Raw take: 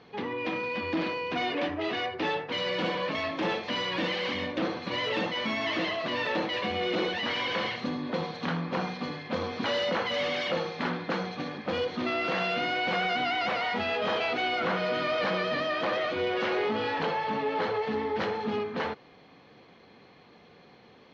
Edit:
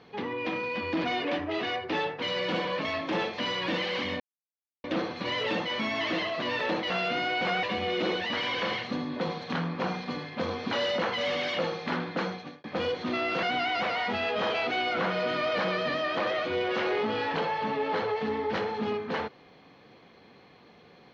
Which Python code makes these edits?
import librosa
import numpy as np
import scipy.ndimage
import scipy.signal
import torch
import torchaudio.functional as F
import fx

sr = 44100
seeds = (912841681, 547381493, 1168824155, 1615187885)

y = fx.edit(x, sr, fx.cut(start_s=1.04, length_s=0.3),
    fx.insert_silence(at_s=4.5, length_s=0.64),
    fx.fade_out_span(start_s=11.18, length_s=0.39),
    fx.move(start_s=12.36, length_s=0.73, to_s=6.56), tone=tone)